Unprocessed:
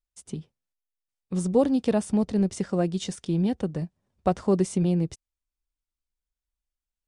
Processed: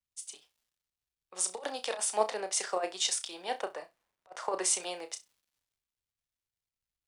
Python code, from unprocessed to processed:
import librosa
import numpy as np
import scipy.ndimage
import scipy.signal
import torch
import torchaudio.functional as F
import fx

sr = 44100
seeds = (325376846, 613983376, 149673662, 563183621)

p1 = scipy.signal.sosfilt(scipy.signal.butter(4, 660.0, 'highpass', fs=sr, output='sos'), x)
p2 = fx.dmg_crackle(p1, sr, seeds[0], per_s=470.0, level_db=-62.0)
p3 = fx.over_compress(p2, sr, threshold_db=-35.0, ratio=-0.5)
p4 = p3 + fx.room_flutter(p3, sr, wall_m=5.6, rt60_s=0.21, dry=0)
p5 = fx.band_widen(p4, sr, depth_pct=70)
y = p5 * librosa.db_to_amplitude(2.5)